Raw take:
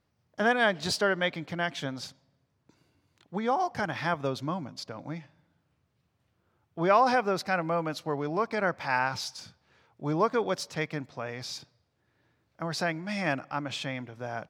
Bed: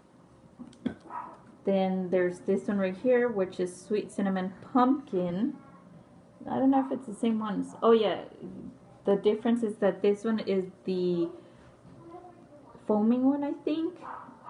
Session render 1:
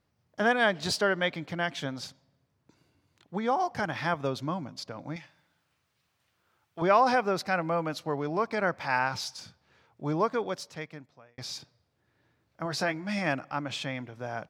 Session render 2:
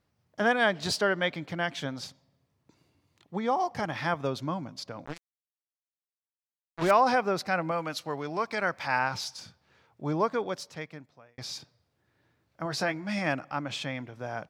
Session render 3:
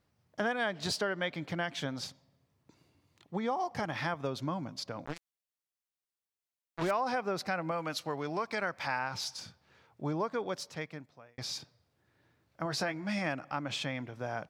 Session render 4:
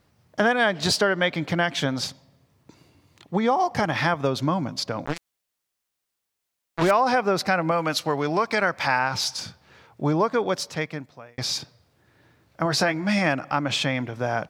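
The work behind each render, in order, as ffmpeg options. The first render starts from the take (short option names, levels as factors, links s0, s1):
-filter_complex "[0:a]asettb=1/sr,asplit=3[s0][s1][s2];[s0]atrim=end=5.164[s3];[s1]atrim=start=5.16:end=6.82,asetpts=PTS-STARTPTS,afade=t=in:d=0.004:c=qsin,afade=t=out:st=1.656:d=0.004:c=qsin,tiltshelf=f=700:g=-8[s4];[s2]atrim=start=6.816[s5];[s3][s4]acrossfade=d=0.004:c1=hsin:c2=qsin[s6];[s6][s5]acrossfade=d=0.004:c1=qsin:c2=hsin,asettb=1/sr,asplit=3[s7][s8][s9];[s7]atrim=end=12.644[s10];[s8]atrim=start=12.64:end=13.19,asetpts=PTS-STARTPTS,afade=t=in:d=0.004:c=qsin,afade=t=out:st=0.546:d=0.004:c=qsin,asplit=2[s11][s12];[s12]adelay=15,volume=0.398[s13];[s11][s13]amix=inputs=2:normalize=0,atrim=end_sample=24255[s14];[s9]atrim=start=13.186[s15];[s10][s14]acrossfade=d=0.004:c1=hsin:c2=qsin[s16];[s16][s15]acrossfade=d=0.004:c1=qsin:c2=hsin,asplit=2[s17][s18];[s17]atrim=end=11.38,asetpts=PTS-STARTPTS,afade=t=out:st=10.04:d=1.34[s19];[s18]atrim=start=11.38,asetpts=PTS-STARTPTS,afade=t=in:d=0.004:c=hsin[s20];[s19][s20]concat=n=2:v=0:a=1"
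-filter_complex "[0:a]asettb=1/sr,asplit=3[s0][s1][s2];[s0]atrim=end=2.054[s3];[s1]atrim=start=2.05:end=3.94,asetpts=PTS-STARTPTS,afade=t=in:d=0.004:c=qsin,afade=t=out:st=1.886:d=0.004:c=qsin,bandreject=f=1500:w=8.8[s4];[s2]atrim=start=3.936[s5];[s3][s4]acrossfade=d=0.004:c1=hsin:c2=qsin[s6];[s6][s5]acrossfade=d=0.004:c1=qsin:c2=hsin,asettb=1/sr,asplit=3[s7][s8][s9];[s7]atrim=end=5.054[s10];[s8]atrim=start=5.05:end=6.91,asetpts=PTS-STARTPTS,afade=t=in:d=0.004:c=qsin,afade=t=out:st=1.856:d=0.004:c=qsin,acrusher=bits=4:mix=0:aa=0.5[s11];[s9]atrim=start=6.906[s12];[s10][s11]acrossfade=d=0.004:c1=hsin:c2=qsin[s13];[s13][s12]acrossfade=d=0.004:c1=qsin:c2=hsin,asettb=1/sr,asplit=3[s14][s15][s16];[s14]atrim=end=7.714[s17];[s15]atrim=start=7.71:end=8.87,asetpts=PTS-STARTPTS,afade=t=in:d=0.004:c=qsin,afade=t=out:st=1.156:d=0.004:c=qsin,tiltshelf=f=1200:g=-4.5[s18];[s16]atrim=start=8.866[s19];[s17][s18]acrossfade=d=0.004:c1=hsin:c2=qsin[s20];[s20][s19]acrossfade=d=0.004:c1=qsin:c2=hsin"
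-af "acompressor=threshold=0.0282:ratio=3"
-af "volume=3.76"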